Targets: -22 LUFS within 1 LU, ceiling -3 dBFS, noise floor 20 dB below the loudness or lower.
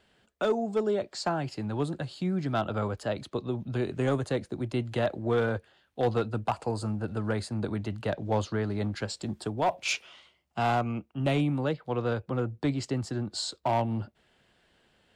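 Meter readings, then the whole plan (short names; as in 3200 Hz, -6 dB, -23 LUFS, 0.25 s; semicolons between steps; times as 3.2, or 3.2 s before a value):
clipped 0.5%; flat tops at -19.0 dBFS; loudness -30.5 LUFS; peak -19.0 dBFS; loudness target -22.0 LUFS
-> clip repair -19 dBFS; gain +8.5 dB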